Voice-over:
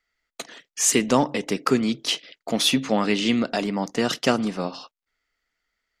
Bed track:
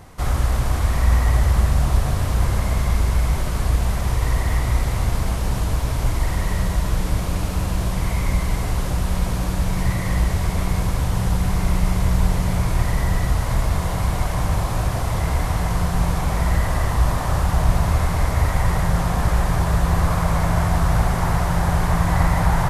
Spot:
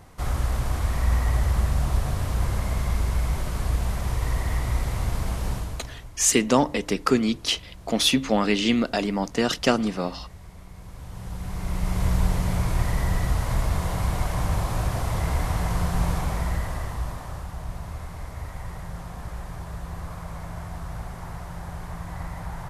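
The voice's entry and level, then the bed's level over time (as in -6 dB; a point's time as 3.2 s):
5.40 s, 0.0 dB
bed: 5.51 s -5.5 dB
6.1 s -23 dB
10.73 s -23 dB
12.05 s -4 dB
16.13 s -4 dB
17.54 s -16.5 dB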